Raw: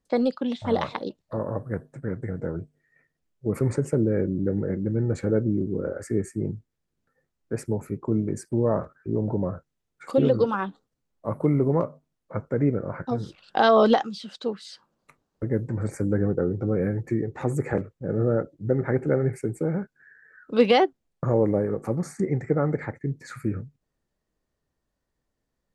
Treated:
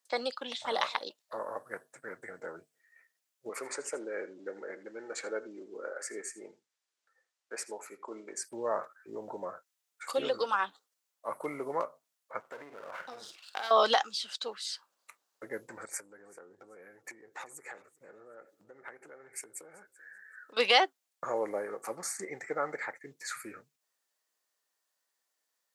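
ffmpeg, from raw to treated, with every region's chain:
-filter_complex "[0:a]asettb=1/sr,asplit=3[a][b][c];[a]atrim=end=3.494[d];[b]atrim=start=3.49:end=8.44,asetpts=PTS-STARTPTS,afade=t=in:d=0.004:c=qsin,afade=t=out:st=4.946:d=0.004:c=qsin,highpass=310,lowpass=7.2k,aecho=1:1:81:0.141,atrim=end_sample=218295[e];[c]atrim=start=8.436[f];[d][e]acrossfade=d=0.004:c1=hsin:c2=qsin[g];[g][f]acrossfade=d=0.004:c1=qsin:c2=hsin,asettb=1/sr,asplit=3[h][i][j];[h]atrim=end=12.404[k];[i]atrim=start=12.4:end=13.71,asetpts=PTS-STARTPTS,afade=t=in:d=0.004:c=qsin,afade=t=out:st=1.306:d=0.004:c=qsin,aeval=exprs='if(lt(val(0),0),0.447*val(0),val(0))':c=same,asplit=2[l][m];[m]adelay=48,volume=-8.5dB[n];[l][n]amix=inputs=2:normalize=0,atrim=end_sample=57771,acompressor=threshold=-29dB:ratio=8:attack=3.2:release=140:knee=1:detection=peak[o];[j]atrim=start=13.706[p];[k][o]acrossfade=d=0.004:c1=hsin:c2=qsin[q];[q][p]acrossfade=d=0.004:c1=qsin:c2=hsin,asettb=1/sr,asplit=3[r][s][t];[r]atrim=end=15.854[u];[s]atrim=start=15.85:end=20.57,asetpts=PTS-STARTPTS,afade=t=in:d=0.004:c=qsin,afade=t=out:st=4.716:d=0.004:c=qsin,acompressor=threshold=-36dB:ratio=10:attack=3.2:release=140:knee=1:detection=peak,aecho=1:1:384|768:0.0891|0.0223,atrim=end_sample=208152[v];[t]atrim=start=20.566[w];[u][v]acrossfade=d=0.004:c1=hsin:c2=qsin[x];[x][w]acrossfade=d=0.004:c1=qsin:c2=hsin,highpass=860,highshelf=f=4.1k:g=10"

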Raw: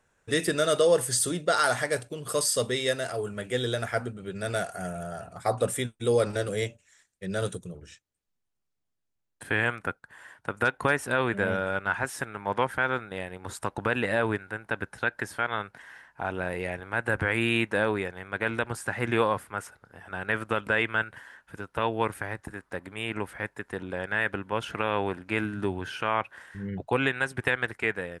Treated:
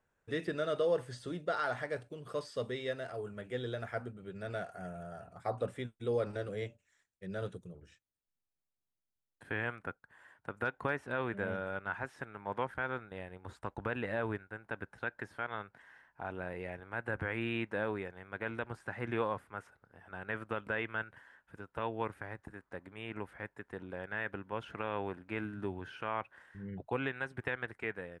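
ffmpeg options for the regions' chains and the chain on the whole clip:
-filter_complex "[0:a]asettb=1/sr,asplit=3[a][b][c];[a]atrim=end=12.744[d];[b]atrim=start=12.74:end=14.54,asetpts=PTS-STARTPTS,afade=t=in:d=0.004:c=qsin,afade=t=out:st=1.796:d=0.004:c=qsin,agate=range=-33dB:threshold=-44dB:ratio=3:release=100:detection=peak,equalizer=f=62:w=1.7:g=8[e];[c]atrim=start=14.536[f];[d][e]acrossfade=d=0.004:c1=hsin:c2=qsin[g];[g][f]acrossfade=d=0.004:c1=qsin:c2=hsin,highshelf=f=3.5k:g=-10,acrossover=split=5000[h][i];[i]acompressor=threshold=-59dB:ratio=4:attack=1:release=60[j];[h][j]amix=inputs=2:normalize=0,volume=-9dB"

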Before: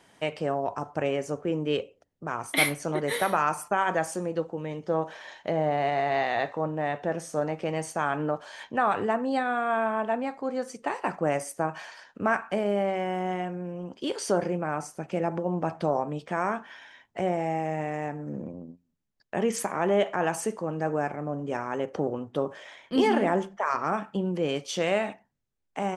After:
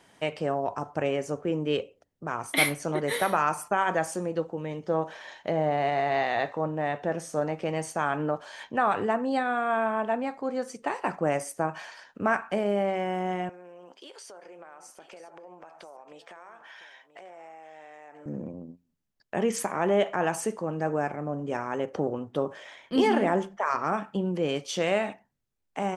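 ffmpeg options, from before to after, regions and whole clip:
-filter_complex "[0:a]asettb=1/sr,asplit=3[a][b][c];[a]atrim=end=13.494[d];[b]atrim=start=13.49:end=18.26,asetpts=PTS-STARTPTS,afade=t=in:d=0.004:c=qsin,afade=t=out:st=4.766:d=0.004:c=qsin,highpass=580,acompressor=threshold=-43dB:ratio=10:attack=3.2:release=140:knee=1:detection=peak,aecho=1:1:982:0.188,atrim=end_sample=210357[e];[c]atrim=start=18.256[f];[d][e]acrossfade=d=0.004:c1=hsin:c2=qsin[g];[g][f]acrossfade=d=0.004:c1=qsin:c2=hsin"

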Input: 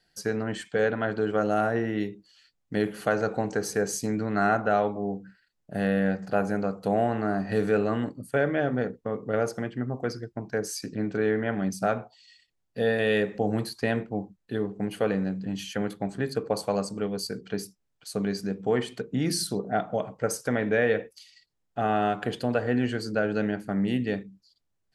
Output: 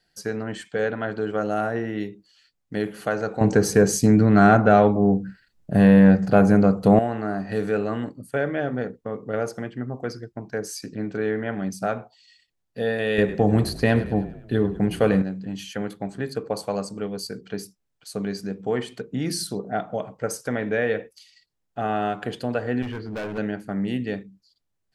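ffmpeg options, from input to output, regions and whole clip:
-filter_complex "[0:a]asettb=1/sr,asplit=3[a][b][c];[a]atrim=end=3.414[d];[b]atrim=start=3.41:end=6.99,asetpts=PTS-STARTPTS,afade=t=in:d=0.004:c=qsin,afade=t=out:st=3.576:d=0.004:c=qsin,lowshelf=f=280:g=11,acontrast=66[e];[c]atrim=start=6.986[f];[d][e]acrossfade=d=0.004:c1=hsin:c2=qsin[g];[g][f]acrossfade=d=0.004:c1=qsin:c2=hsin,asettb=1/sr,asplit=3[h][i][j];[h]atrim=end=13.184[k];[i]atrim=start=13.18:end=15.22,asetpts=PTS-STARTPTS,afade=t=in:d=0.004:c=qsin,afade=t=out:st=2.036:d=0.004:c=qsin,lowshelf=f=120:g=10.5,acontrast=39,asplit=6[l][m][n][o][p][q];[m]adelay=102,afreqshift=-31,volume=-15.5dB[r];[n]adelay=204,afreqshift=-62,volume=-20.9dB[s];[o]adelay=306,afreqshift=-93,volume=-26.2dB[t];[p]adelay=408,afreqshift=-124,volume=-31.6dB[u];[q]adelay=510,afreqshift=-155,volume=-36.9dB[v];[l][r][s][t][u][v]amix=inputs=6:normalize=0,atrim=end_sample=89964[w];[j]atrim=start=15.216[x];[k][w]acrossfade=d=0.004:c1=hsin:c2=qsin[y];[y][x]acrossfade=d=0.004:c1=qsin:c2=hsin,asettb=1/sr,asplit=3[z][aa][ab];[z]atrim=end=22.824[ac];[aa]atrim=start=22.82:end=23.38,asetpts=PTS-STARTPTS,afade=t=in:d=0.004:c=qsin,afade=t=out:st=0.556:d=0.004:c=qsin,lowpass=f=3.1k:w=0.5412,lowpass=f=3.1k:w=1.3066,equalizer=f=77:w=2.2:g=12,asoftclip=type=hard:threshold=-27.5dB[ad];[ab]atrim=start=23.376[ae];[ac][ad]acrossfade=d=0.004:c1=hsin:c2=qsin[af];[af][ae]acrossfade=d=0.004:c1=qsin:c2=hsin"

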